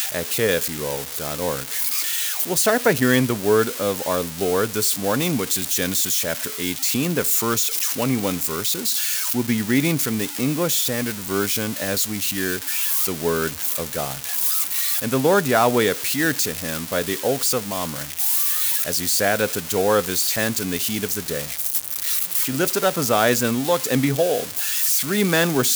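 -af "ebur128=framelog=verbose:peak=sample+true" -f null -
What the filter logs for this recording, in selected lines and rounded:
Integrated loudness:
  I:         -20.2 LUFS
  Threshold: -30.2 LUFS
Loudness range:
  LRA:         1.8 LU
  Threshold: -40.2 LUFS
  LRA low:   -21.1 LUFS
  LRA high:  -19.4 LUFS
Sample peak:
  Peak:       -5.2 dBFS
True peak:
  Peak:       -5.2 dBFS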